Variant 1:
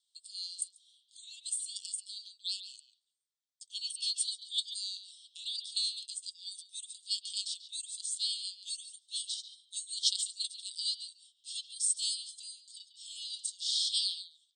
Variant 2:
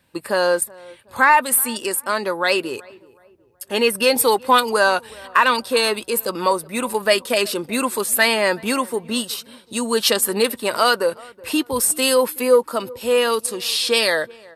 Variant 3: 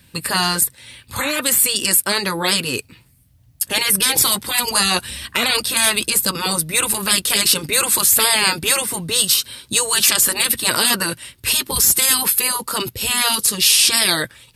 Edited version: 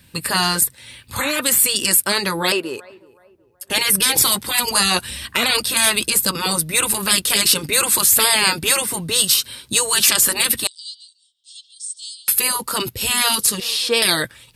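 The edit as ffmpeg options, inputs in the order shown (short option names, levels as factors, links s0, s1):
-filter_complex "[1:a]asplit=2[s0][s1];[2:a]asplit=4[s2][s3][s4][s5];[s2]atrim=end=2.522[s6];[s0]atrim=start=2.518:end=3.702[s7];[s3]atrim=start=3.698:end=10.672[s8];[0:a]atrim=start=10.668:end=12.282[s9];[s4]atrim=start=12.278:end=13.602[s10];[s1]atrim=start=13.598:end=14.022[s11];[s5]atrim=start=14.018[s12];[s6][s7]acrossfade=d=0.004:c1=hsin:c2=hsin[s13];[s13][s8]acrossfade=d=0.004:c1=hsin:c2=hsin[s14];[s14][s9]acrossfade=d=0.004:c1=hsin:c2=hsin[s15];[s15][s10]acrossfade=d=0.004:c1=hsin:c2=hsin[s16];[s16][s11]acrossfade=d=0.004:c1=hsin:c2=hsin[s17];[s17][s12]acrossfade=d=0.004:c1=hsin:c2=hsin"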